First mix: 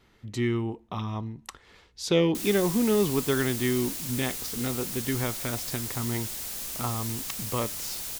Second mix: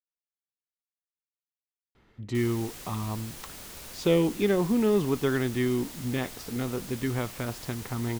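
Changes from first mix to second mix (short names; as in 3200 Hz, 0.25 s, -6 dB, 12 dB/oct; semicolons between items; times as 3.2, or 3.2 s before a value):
speech: entry +1.95 s; master: add high shelf 3700 Hz -11 dB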